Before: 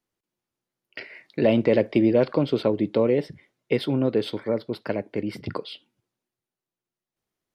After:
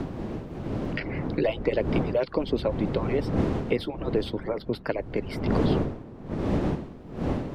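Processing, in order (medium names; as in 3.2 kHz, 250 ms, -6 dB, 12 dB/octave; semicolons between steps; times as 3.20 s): harmonic-percussive separation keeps percussive; wind noise 290 Hz -28 dBFS; three bands compressed up and down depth 70%; trim -2 dB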